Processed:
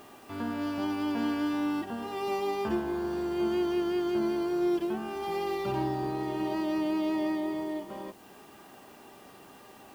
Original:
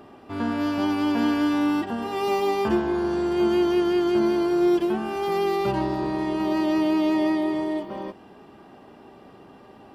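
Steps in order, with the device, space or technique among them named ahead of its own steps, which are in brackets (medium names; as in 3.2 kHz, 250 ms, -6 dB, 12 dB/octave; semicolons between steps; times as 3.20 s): 5.10–6.55 s: flutter echo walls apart 9.2 m, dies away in 0.5 s; noise-reduction cassette on a plain deck (tape noise reduction on one side only encoder only; wow and flutter 8.8 cents; white noise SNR 30 dB); trim -7.5 dB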